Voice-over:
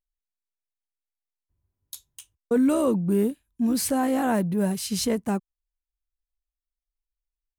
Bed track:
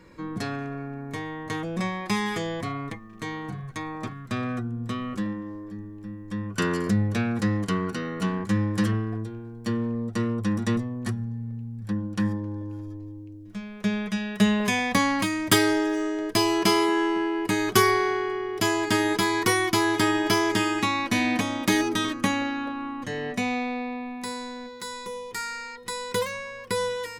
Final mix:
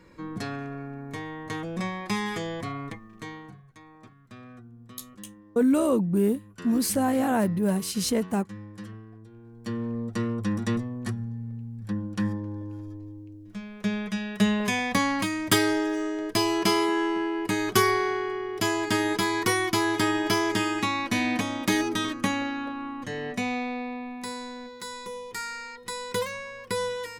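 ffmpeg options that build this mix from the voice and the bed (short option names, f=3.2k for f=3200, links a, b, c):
-filter_complex "[0:a]adelay=3050,volume=-0.5dB[a];[1:a]volume=12.5dB,afade=t=out:st=3.05:d=0.58:silence=0.188365,afade=t=in:st=9.21:d=0.77:silence=0.177828[b];[a][b]amix=inputs=2:normalize=0"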